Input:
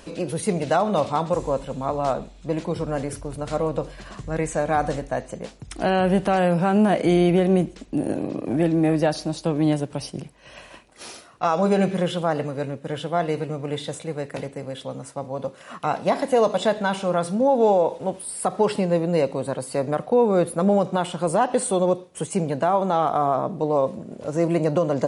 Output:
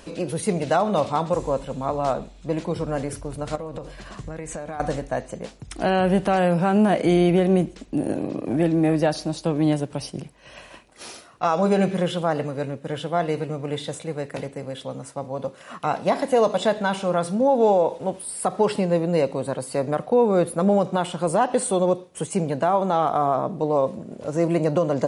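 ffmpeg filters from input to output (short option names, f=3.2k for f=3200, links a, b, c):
-filter_complex "[0:a]asettb=1/sr,asplit=3[a][b][c];[a]atrim=end=3.554[d];[b]atrim=start=3.55:end=4.8,asetpts=PTS-STARTPTS,afade=t=in:d=0.004:c=qsin,afade=t=out:st=1.246:d=0.004:c=qsin,acompressor=threshold=-28dB:ratio=10:attack=3.2:release=140:knee=1:detection=peak[e];[c]atrim=start=4.796[f];[d][e]acrossfade=d=0.004:c1=hsin:c2=qsin[g];[g][f]acrossfade=d=0.004:c1=qsin:c2=hsin"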